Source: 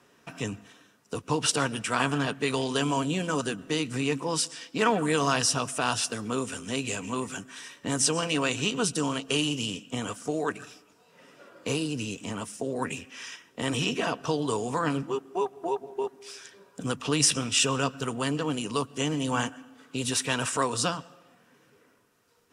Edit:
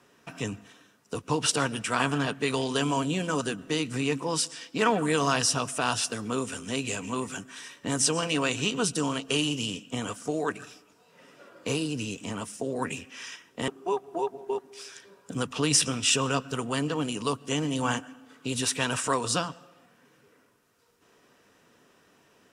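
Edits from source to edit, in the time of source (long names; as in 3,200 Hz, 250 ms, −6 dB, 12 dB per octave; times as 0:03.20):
0:13.68–0:15.17: remove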